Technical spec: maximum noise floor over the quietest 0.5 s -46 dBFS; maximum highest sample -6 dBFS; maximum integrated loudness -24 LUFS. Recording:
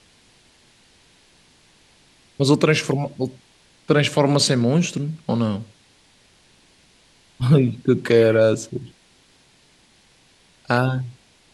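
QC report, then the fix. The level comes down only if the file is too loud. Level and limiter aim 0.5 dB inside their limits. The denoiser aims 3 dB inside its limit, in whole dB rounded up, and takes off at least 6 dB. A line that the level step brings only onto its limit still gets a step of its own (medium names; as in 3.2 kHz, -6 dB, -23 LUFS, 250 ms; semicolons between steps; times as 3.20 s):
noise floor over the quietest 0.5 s -56 dBFS: pass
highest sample -3.5 dBFS: fail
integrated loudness -19.5 LUFS: fail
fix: trim -5 dB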